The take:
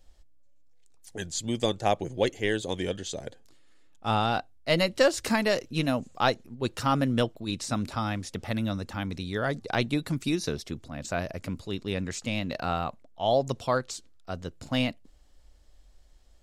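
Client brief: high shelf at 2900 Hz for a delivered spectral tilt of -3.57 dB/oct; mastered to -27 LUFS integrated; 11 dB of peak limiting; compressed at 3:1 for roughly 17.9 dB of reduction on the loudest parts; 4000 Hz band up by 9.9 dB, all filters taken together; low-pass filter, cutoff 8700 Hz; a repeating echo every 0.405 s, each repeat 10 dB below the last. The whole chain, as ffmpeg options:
-af "lowpass=8.7k,highshelf=f=2.9k:g=5,equalizer=f=4k:t=o:g=8.5,acompressor=threshold=-40dB:ratio=3,alimiter=level_in=6dB:limit=-24dB:level=0:latency=1,volume=-6dB,aecho=1:1:405|810|1215|1620:0.316|0.101|0.0324|0.0104,volume=15dB"

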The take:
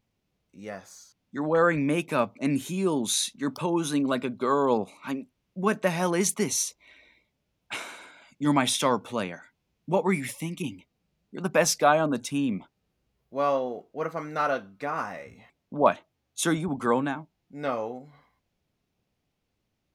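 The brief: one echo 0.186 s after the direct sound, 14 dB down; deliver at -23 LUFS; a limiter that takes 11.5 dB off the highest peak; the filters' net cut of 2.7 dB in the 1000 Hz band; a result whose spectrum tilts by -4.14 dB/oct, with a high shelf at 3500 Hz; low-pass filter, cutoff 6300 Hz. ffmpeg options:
-af "lowpass=6.3k,equalizer=f=1k:t=o:g=-4,highshelf=f=3.5k:g=5,alimiter=limit=-19.5dB:level=0:latency=1,aecho=1:1:186:0.2,volume=8dB"

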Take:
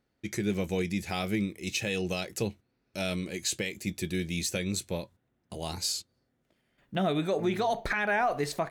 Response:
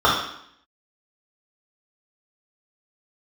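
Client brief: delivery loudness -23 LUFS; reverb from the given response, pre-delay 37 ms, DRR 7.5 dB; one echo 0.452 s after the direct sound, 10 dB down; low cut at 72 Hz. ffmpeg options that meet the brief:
-filter_complex "[0:a]highpass=72,aecho=1:1:452:0.316,asplit=2[a][b];[1:a]atrim=start_sample=2205,adelay=37[c];[b][c]afir=irnorm=-1:irlink=0,volume=-31dB[d];[a][d]amix=inputs=2:normalize=0,volume=8dB"

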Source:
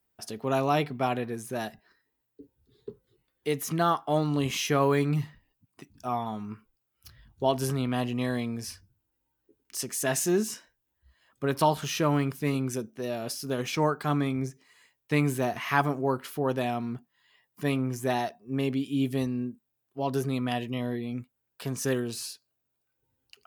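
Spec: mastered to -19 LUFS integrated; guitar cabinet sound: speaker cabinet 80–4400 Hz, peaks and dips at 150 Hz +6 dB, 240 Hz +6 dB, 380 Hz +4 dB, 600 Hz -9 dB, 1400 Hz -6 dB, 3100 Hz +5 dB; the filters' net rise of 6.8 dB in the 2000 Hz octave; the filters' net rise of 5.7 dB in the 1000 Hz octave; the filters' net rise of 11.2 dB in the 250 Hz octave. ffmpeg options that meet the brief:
-af "highpass=80,equalizer=f=150:t=q:w=4:g=6,equalizer=f=240:t=q:w=4:g=6,equalizer=f=380:t=q:w=4:g=4,equalizer=f=600:t=q:w=4:g=-9,equalizer=f=1.4k:t=q:w=4:g=-6,equalizer=f=3.1k:t=q:w=4:g=5,lowpass=f=4.4k:w=0.5412,lowpass=f=4.4k:w=1.3066,equalizer=f=250:t=o:g=7.5,equalizer=f=1k:t=o:g=7.5,equalizer=f=2k:t=o:g=7.5,volume=2.5dB"

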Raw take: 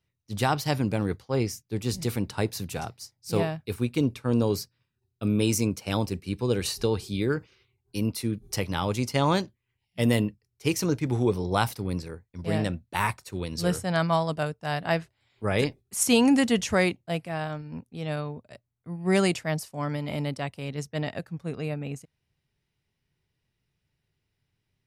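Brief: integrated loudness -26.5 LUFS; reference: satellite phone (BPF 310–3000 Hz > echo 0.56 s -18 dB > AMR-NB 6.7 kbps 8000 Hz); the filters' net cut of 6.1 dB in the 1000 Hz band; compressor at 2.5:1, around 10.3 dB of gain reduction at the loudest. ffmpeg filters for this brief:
-af "equalizer=f=1k:t=o:g=-8,acompressor=threshold=-33dB:ratio=2.5,highpass=310,lowpass=3k,aecho=1:1:560:0.126,volume=15dB" -ar 8000 -c:a libopencore_amrnb -b:a 6700

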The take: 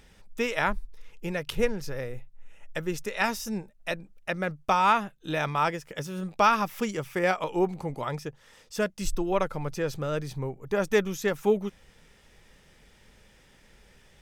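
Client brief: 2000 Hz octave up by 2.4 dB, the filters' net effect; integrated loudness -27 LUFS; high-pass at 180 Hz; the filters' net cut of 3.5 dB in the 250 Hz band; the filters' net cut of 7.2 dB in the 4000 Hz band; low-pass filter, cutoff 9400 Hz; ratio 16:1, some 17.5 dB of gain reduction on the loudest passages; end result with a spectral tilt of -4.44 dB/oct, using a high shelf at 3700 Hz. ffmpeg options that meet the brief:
-af "highpass=180,lowpass=9.4k,equalizer=f=250:t=o:g=-3,equalizer=f=2k:t=o:g=7,highshelf=f=3.7k:g=-8.5,equalizer=f=4k:t=o:g=-7.5,acompressor=threshold=-34dB:ratio=16,volume=13.5dB"

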